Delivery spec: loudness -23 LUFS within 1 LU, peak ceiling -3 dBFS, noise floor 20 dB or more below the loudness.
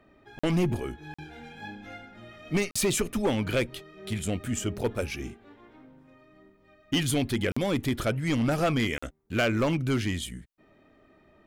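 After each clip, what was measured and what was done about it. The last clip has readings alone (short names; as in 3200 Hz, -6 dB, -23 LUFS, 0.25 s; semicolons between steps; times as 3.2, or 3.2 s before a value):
clipped 1.5%; flat tops at -19.5 dBFS; dropouts 5; longest dropout 45 ms; loudness -28.5 LUFS; peak -19.5 dBFS; loudness target -23.0 LUFS
-> clip repair -19.5 dBFS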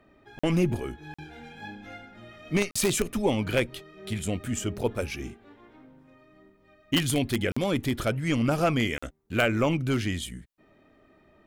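clipped 0.0%; dropouts 5; longest dropout 45 ms
-> interpolate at 0.39/1.14/2.71/7.52/8.98, 45 ms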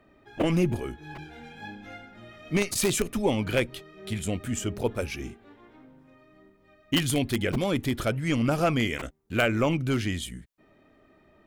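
dropouts 0; loudness -27.5 LUFS; peak -10.5 dBFS; loudness target -23.0 LUFS
-> gain +4.5 dB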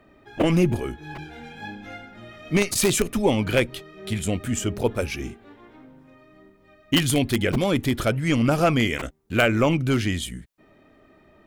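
loudness -23.0 LUFS; peak -6.0 dBFS; noise floor -56 dBFS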